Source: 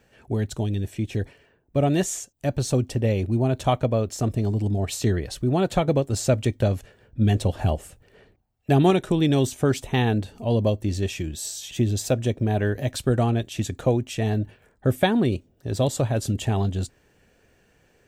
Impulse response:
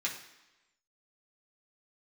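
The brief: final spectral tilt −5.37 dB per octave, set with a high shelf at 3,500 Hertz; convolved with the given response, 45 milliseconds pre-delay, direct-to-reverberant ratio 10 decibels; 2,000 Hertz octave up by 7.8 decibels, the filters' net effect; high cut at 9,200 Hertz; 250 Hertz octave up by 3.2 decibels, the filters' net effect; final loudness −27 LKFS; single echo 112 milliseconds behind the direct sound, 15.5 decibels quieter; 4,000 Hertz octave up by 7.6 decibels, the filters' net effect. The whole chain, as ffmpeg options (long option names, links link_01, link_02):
-filter_complex "[0:a]lowpass=9200,equalizer=frequency=250:width_type=o:gain=4,equalizer=frequency=2000:width_type=o:gain=8.5,highshelf=frequency=3500:gain=-3.5,equalizer=frequency=4000:width_type=o:gain=9,aecho=1:1:112:0.168,asplit=2[link_01][link_02];[1:a]atrim=start_sample=2205,adelay=45[link_03];[link_02][link_03]afir=irnorm=-1:irlink=0,volume=-14.5dB[link_04];[link_01][link_04]amix=inputs=2:normalize=0,volume=-5.5dB"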